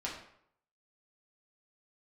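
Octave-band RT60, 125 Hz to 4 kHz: 0.70, 0.65, 0.70, 0.70, 0.60, 0.50 s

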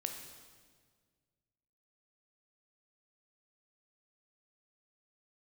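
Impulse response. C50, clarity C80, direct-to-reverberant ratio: 6.0 dB, 7.5 dB, 4.0 dB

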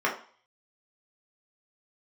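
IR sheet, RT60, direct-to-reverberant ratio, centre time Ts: 0.45 s, -4.0 dB, 22 ms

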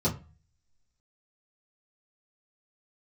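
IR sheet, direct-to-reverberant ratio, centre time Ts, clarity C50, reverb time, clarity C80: -9.0 dB, 15 ms, 13.5 dB, 0.35 s, 19.0 dB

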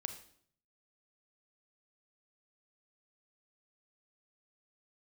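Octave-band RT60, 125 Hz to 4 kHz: 0.90, 0.70, 0.65, 0.60, 0.55, 0.55 s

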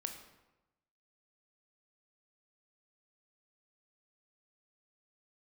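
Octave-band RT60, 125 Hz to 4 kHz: 1.2, 1.0, 1.0, 1.0, 0.85, 0.70 s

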